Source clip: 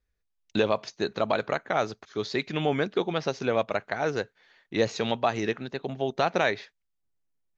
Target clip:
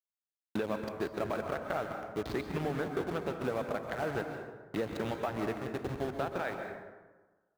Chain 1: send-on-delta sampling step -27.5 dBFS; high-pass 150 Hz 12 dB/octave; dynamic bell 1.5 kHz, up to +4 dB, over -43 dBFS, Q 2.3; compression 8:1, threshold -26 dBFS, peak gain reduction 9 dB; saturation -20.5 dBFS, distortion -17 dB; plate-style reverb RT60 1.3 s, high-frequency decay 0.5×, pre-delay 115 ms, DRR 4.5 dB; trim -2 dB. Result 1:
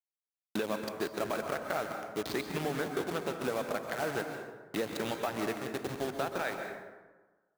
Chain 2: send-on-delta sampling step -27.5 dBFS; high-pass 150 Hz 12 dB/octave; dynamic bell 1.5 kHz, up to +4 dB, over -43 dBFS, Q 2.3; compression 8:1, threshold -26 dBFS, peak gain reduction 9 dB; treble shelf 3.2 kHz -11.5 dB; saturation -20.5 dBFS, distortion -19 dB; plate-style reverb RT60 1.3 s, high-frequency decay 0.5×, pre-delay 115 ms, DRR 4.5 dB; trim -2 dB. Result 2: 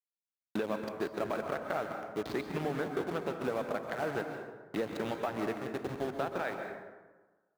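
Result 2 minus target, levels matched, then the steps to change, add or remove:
125 Hz band -3.0 dB
change: high-pass 71 Hz 12 dB/octave

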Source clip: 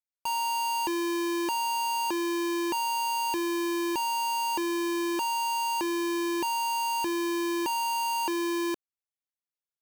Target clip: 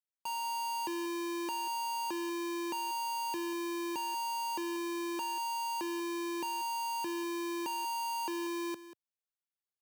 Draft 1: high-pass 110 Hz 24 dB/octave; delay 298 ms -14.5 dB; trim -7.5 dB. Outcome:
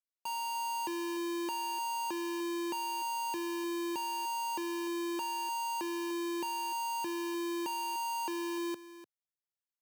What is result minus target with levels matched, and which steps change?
echo 110 ms late
change: delay 188 ms -14.5 dB

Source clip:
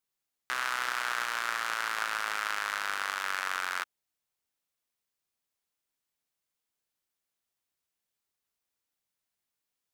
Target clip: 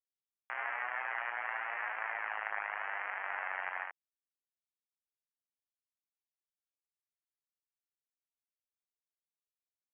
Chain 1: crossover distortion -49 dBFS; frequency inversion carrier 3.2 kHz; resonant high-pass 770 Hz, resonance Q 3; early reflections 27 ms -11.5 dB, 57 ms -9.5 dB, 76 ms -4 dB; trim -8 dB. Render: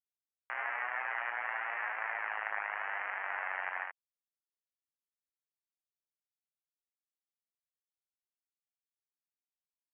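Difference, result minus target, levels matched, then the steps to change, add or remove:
crossover distortion: distortion -7 dB
change: crossover distortion -39.5 dBFS

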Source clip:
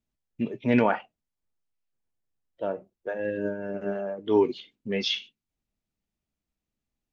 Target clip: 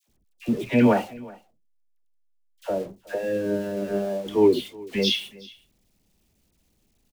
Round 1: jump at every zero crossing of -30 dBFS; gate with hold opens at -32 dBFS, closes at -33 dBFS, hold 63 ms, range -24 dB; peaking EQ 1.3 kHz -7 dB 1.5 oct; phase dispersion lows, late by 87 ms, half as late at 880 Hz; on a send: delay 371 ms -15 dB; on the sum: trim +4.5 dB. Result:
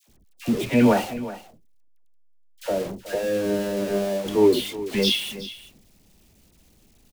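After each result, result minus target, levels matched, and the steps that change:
jump at every zero crossing: distortion +9 dB; echo-to-direct +7 dB
change: jump at every zero crossing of -40 dBFS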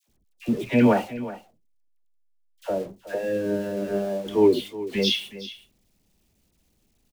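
echo-to-direct +7 dB
change: delay 371 ms -22 dB

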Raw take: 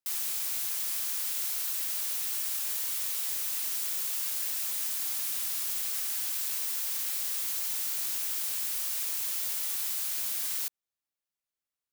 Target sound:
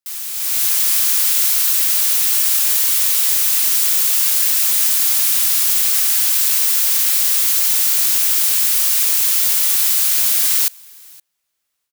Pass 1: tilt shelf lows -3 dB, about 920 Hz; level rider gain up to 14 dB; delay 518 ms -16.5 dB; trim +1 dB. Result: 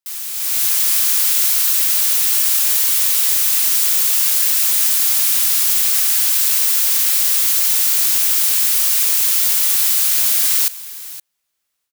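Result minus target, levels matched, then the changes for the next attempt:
echo-to-direct +9.5 dB
change: delay 518 ms -26 dB

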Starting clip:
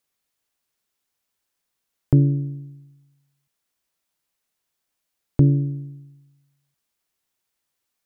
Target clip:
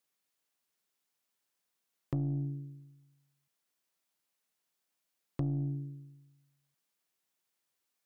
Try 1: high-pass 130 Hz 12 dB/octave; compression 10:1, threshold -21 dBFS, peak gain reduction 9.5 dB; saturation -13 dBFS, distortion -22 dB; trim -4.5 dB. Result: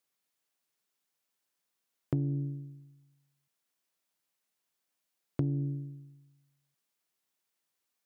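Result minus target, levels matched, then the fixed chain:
saturation: distortion -10 dB
high-pass 130 Hz 12 dB/octave; compression 10:1, threshold -21 dBFS, peak gain reduction 9.5 dB; saturation -21.5 dBFS, distortion -12 dB; trim -4.5 dB

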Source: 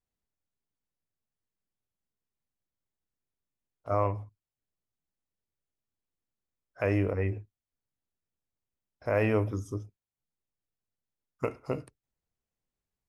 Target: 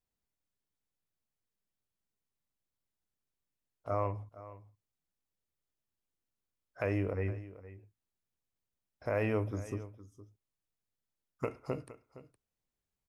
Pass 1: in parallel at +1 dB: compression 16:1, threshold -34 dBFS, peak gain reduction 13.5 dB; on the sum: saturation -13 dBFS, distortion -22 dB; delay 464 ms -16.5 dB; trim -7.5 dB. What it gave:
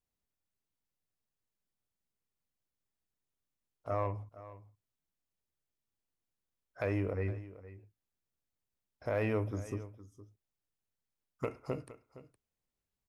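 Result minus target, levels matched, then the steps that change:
saturation: distortion +21 dB
change: saturation -1.5 dBFS, distortion -44 dB

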